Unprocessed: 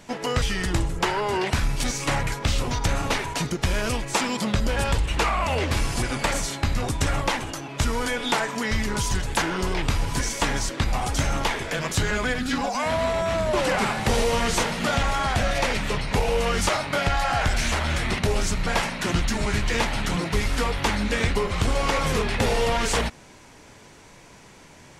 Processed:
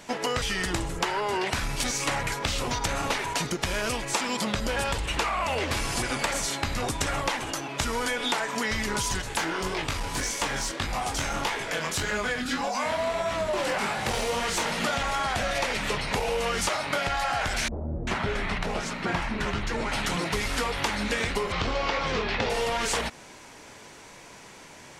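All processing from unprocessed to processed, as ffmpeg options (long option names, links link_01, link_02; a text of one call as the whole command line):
ffmpeg -i in.wav -filter_complex "[0:a]asettb=1/sr,asplit=3[link_01][link_02][link_03];[link_01]atrim=end=9.224[link_04];[link_02]atrim=start=9.22:end=14.66,asetpts=PTS-STARTPTS,afade=type=in:duration=0.004:curve=qsin,afade=type=out:start_time=5.436:duration=0.004:curve=qsin,flanger=delay=19:depth=5.7:speed=1.7,aeval=exprs='clip(val(0),-1,0.0841)':channel_layout=same[link_05];[link_03]atrim=start=14.656[link_06];[link_04][link_05]acrossfade=duration=0.004:curve1=hsin:curve2=qsin[link_07];[link_07][link_06]acrossfade=duration=0.004:curve1=qsin:curve2=hsin,asettb=1/sr,asplit=3[link_08][link_09][link_10];[link_08]atrim=end=17.684[link_11];[link_09]atrim=start=17.68:end=19.92,asetpts=PTS-STARTPTS,afade=type=in:duration=0.004:curve=qsin,afade=type=out:start_time=2.236:duration=0.004:curve=qsin,lowpass=frequency=1800:poles=1,acrossover=split=540[link_12][link_13];[link_13]adelay=390[link_14];[link_12][link_14]amix=inputs=2:normalize=0,atrim=end_sample=98784[link_15];[link_10]atrim=start=19.916[link_16];[link_11][link_15]acrossfade=duration=0.004:curve1=hsin:curve2=qsin[link_17];[link_17][link_16]acrossfade=duration=0.004:curve1=qsin:curve2=hsin,asettb=1/sr,asplit=3[link_18][link_19][link_20];[link_18]atrim=end=21.524[link_21];[link_19]atrim=start=21.52:end=22.5,asetpts=PTS-STARTPTS,afade=type=in:duration=0.004:curve=qsin,afade=type=out:start_time=0.976:duration=0.004:curve=qsin,lowpass=frequency=5300:width=0.5412,lowpass=frequency=5300:width=1.3066,asplit=2[link_22][link_23];[link_23]adelay=23,volume=-12dB[link_24];[link_22][link_24]amix=inputs=2:normalize=0,atrim=end_sample=43218[link_25];[link_20]atrim=start=22.496[link_26];[link_21][link_25]acrossfade=duration=0.004:curve1=hsin:curve2=qsin[link_27];[link_27][link_26]acrossfade=duration=0.004:curve1=qsin:curve2=hsin,lowshelf=frequency=220:gain=-9.5,acompressor=threshold=-27dB:ratio=6,volume=3dB" out.wav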